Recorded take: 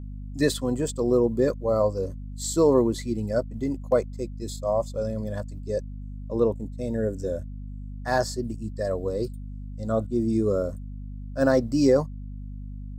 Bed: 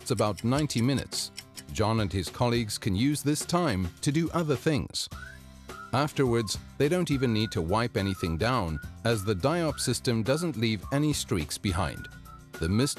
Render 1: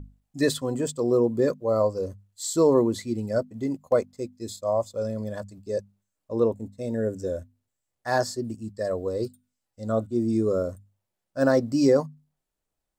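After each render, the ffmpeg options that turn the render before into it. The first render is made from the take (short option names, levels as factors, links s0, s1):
-af "bandreject=f=50:t=h:w=6,bandreject=f=100:t=h:w=6,bandreject=f=150:t=h:w=6,bandreject=f=200:t=h:w=6,bandreject=f=250:t=h:w=6"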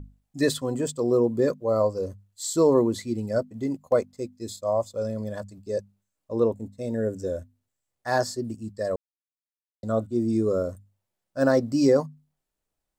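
-filter_complex "[0:a]asplit=3[s0][s1][s2];[s0]atrim=end=8.96,asetpts=PTS-STARTPTS,afade=t=out:st=8.956:d=0.004:c=hsin[s3];[s1]atrim=start=8.96:end=9.83,asetpts=PTS-STARTPTS,volume=0[s4];[s2]atrim=start=9.83,asetpts=PTS-STARTPTS,afade=t=in:d=0.004:c=hsin[s5];[s3][s4][s5]concat=n=3:v=0:a=1"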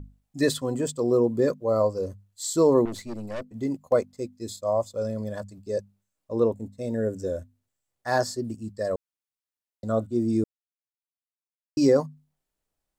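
-filter_complex "[0:a]asettb=1/sr,asplit=3[s0][s1][s2];[s0]atrim=end=2.854[s3];[s1]atrim=start=2.85:end=3.53,asetpts=PTS-STARTPTS,afade=t=in:d=0.004:c=qsin,afade=t=out:st=0.676:d=0.004:c=qsin,aeval=exprs='(tanh(31.6*val(0)+0.65)-tanh(0.65))/31.6':c=same[s4];[s2]atrim=start=3.526[s5];[s3][s4]acrossfade=d=0.004:c1=hsin:c2=qsin[s6];[s6][s5]acrossfade=d=0.004:c1=qsin:c2=hsin,asplit=3[s7][s8][s9];[s7]atrim=end=10.44,asetpts=PTS-STARTPTS,afade=t=out:st=10.436:d=0.004:c=hsin[s10];[s8]atrim=start=10.44:end=11.77,asetpts=PTS-STARTPTS,volume=0[s11];[s9]atrim=start=11.77,asetpts=PTS-STARTPTS,afade=t=in:d=0.004:c=hsin[s12];[s10][s11][s12]concat=n=3:v=0:a=1"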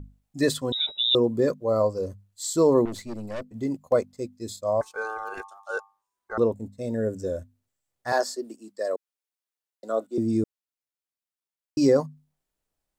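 -filter_complex "[0:a]asettb=1/sr,asplit=3[s0][s1][s2];[s0]atrim=end=0.724[s3];[s1]atrim=start=0.72:end=1.15,asetpts=PTS-STARTPTS,afade=t=in:d=0.004:c=qsin,afade=t=out:st=0.426:d=0.004:c=qsin,lowpass=f=3400:t=q:w=0.5098,lowpass=f=3400:t=q:w=0.6013,lowpass=f=3400:t=q:w=0.9,lowpass=f=3400:t=q:w=2.563,afreqshift=-4000[s4];[s2]atrim=start=1.146[s5];[s3][s4]acrossfade=d=0.004:c1=hsin:c2=qsin[s6];[s6][s5]acrossfade=d=0.004:c1=qsin:c2=hsin,asettb=1/sr,asplit=3[s7][s8][s9];[s7]atrim=end=4.814[s10];[s8]atrim=start=4.81:end=6.38,asetpts=PTS-STARTPTS,afade=t=in:d=0.004:c=qsin,afade=t=out:st=1.566:d=0.004:c=qsin,aeval=exprs='val(0)*sin(2*PI*990*n/s)':c=same[s11];[s9]atrim=start=6.376[s12];[s10][s11]acrossfade=d=0.004:c1=hsin:c2=qsin[s13];[s13][s12]acrossfade=d=0.004:c1=qsin:c2=hsin,asettb=1/sr,asplit=3[s14][s15][s16];[s14]atrim=end=8.124[s17];[s15]atrim=start=8.12:end=10.18,asetpts=PTS-STARTPTS,afade=t=in:d=0.004:c=qsin,afade=t=out:st=2.056:d=0.004:c=qsin,highpass=f=310:w=0.5412,highpass=f=310:w=1.3066[s18];[s16]atrim=start=10.176[s19];[s17][s18]acrossfade=d=0.004:c1=hsin:c2=qsin[s20];[s20][s19]acrossfade=d=0.004:c1=qsin:c2=hsin"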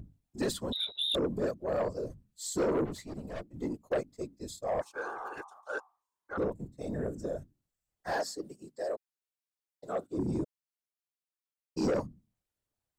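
-af "afftfilt=real='hypot(re,im)*cos(2*PI*random(0))':imag='hypot(re,im)*sin(2*PI*random(1))':win_size=512:overlap=0.75,asoftclip=type=tanh:threshold=0.0631"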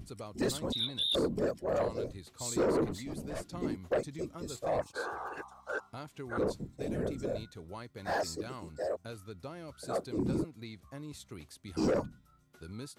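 -filter_complex "[1:a]volume=0.119[s0];[0:a][s0]amix=inputs=2:normalize=0"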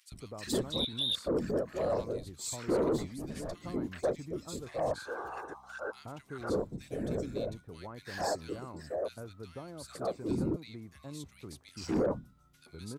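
-filter_complex "[0:a]acrossover=split=1600[s0][s1];[s0]adelay=120[s2];[s2][s1]amix=inputs=2:normalize=0"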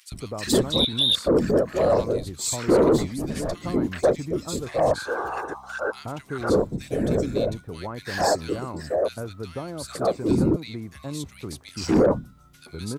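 -af "volume=3.76"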